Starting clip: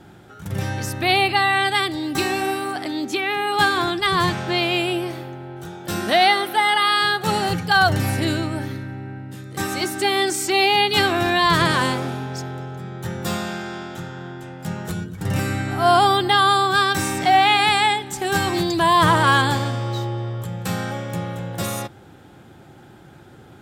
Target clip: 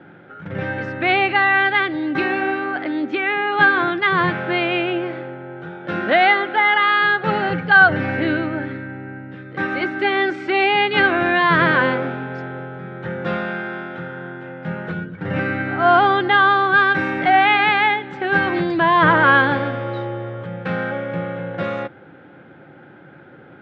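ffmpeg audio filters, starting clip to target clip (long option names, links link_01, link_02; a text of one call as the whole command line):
ffmpeg -i in.wav -af "highpass=140,equalizer=frequency=160:width_type=q:width=4:gain=5,equalizer=frequency=290:width_type=q:width=4:gain=5,equalizer=frequency=530:width_type=q:width=4:gain=9,equalizer=frequency=1500:width_type=q:width=4:gain=9,equalizer=frequency=2100:width_type=q:width=4:gain=5,lowpass=frequency=3000:width=0.5412,lowpass=frequency=3000:width=1.3066,volume=-1dB" out.wav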